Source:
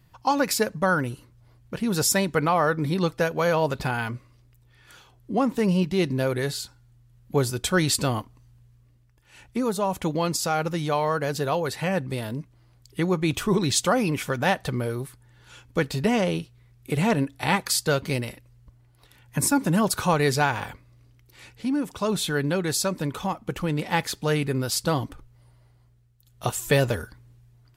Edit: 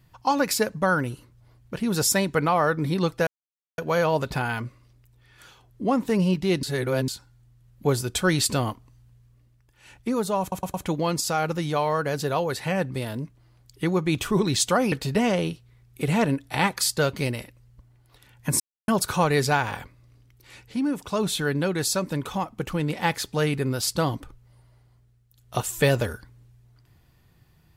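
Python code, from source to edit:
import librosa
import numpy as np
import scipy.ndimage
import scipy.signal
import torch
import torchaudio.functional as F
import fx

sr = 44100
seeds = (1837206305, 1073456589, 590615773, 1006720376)

y = fx.edit(x, sr, fx.insert_silence(at_s=3.27, length_s=0.51),
    fx.reverse_span(start_s=6.12, length_s=0.45),
    fx.stutter(start_s=9.9, slice_s=0.11, count=4),
    fx.cut(start_s=14.08, length_s=1.73),
    fx.silence(start_s=19.49, length_s=0.28), tone=tone)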